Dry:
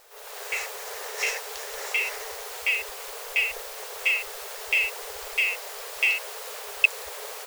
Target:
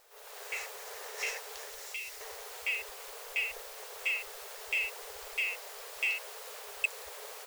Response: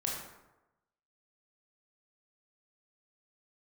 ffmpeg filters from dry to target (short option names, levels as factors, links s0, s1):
-filter_complex "[0:a]asettb=1/sr,asplit=3[s0][s1][s2];[s0]atrim=end=1.684[s3];[s1]atrim=start=1.68:end=2.21,asetpts=PTS-STARTPTS,afade=t=in:d=0.004:c=qsin,afade=t=out:st=0.526:d=0.004:c=qsin,acrossover=split=130|3000[s4][s5][s6];[s5]acompressor=threshold=0.00891:ratio=6[s7];[s4][s7][s6]amix=inputs=3:normalize=0[s8];[s2]atrim=start=2.206[s9];[s3][s8]acrossfade=d=0.004:c1=hsin:c2=qsin[s10];[s10][s9]acrossfade=d=0.004:c1=qsin:c2=hsin,asoftclip=type=tanh:threshold=0.266,volume=0.398"